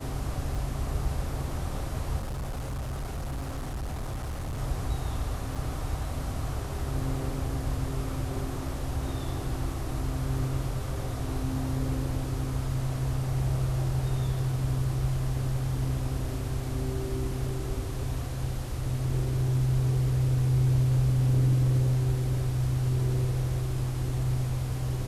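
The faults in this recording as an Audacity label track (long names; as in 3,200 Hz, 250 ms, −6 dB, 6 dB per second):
0.550000	0.550000	drop-out 3.3 ms
2.180000	4.590000	clipping −30 dBFS
5.550000	5.550000	drop-out 4.9 ms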